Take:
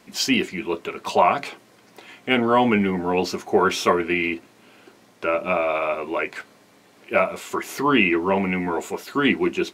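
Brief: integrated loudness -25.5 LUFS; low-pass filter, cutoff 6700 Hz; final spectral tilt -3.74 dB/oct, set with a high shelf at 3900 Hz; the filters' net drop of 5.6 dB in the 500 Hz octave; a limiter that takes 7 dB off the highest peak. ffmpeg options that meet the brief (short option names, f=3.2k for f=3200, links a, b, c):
-af "lowpass=6.7k,equalizer=f=500:t=o:g=-7.5,highshelf=f=3.9k:g=-7,volume=1dB,alimiter=limit=-12.5dB:level=0:latency=1"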